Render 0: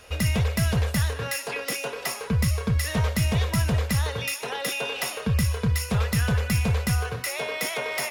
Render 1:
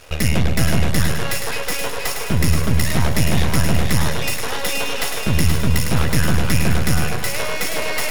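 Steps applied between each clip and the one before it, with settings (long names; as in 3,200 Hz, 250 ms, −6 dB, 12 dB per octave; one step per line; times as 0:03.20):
half-wave rectification
echo with a time of its own for lows and highs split 800 Hz, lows 111 ms, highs 476 ms, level −5 dB
level +9 dB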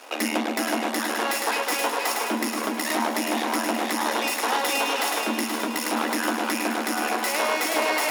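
brickwall limiter −9 dBFS, peak gain reduction 5.5 dB
Chebyshev high-pass with heavy ripple 220 Hz, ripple 9 dB
level +7 dB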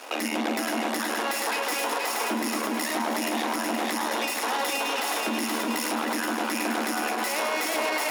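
brickwall limiter −21 dBFS, peak gain reduction 10 dB
level +3 dB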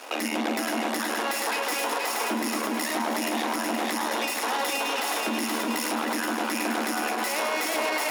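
no processing that can be heard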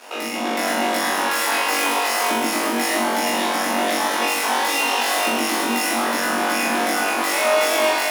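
automatic gain control gain up to 5 dB
on a send: flutter between parallel walls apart 3.6 metres, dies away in 0.85 s
on the sum: level −2.5 dB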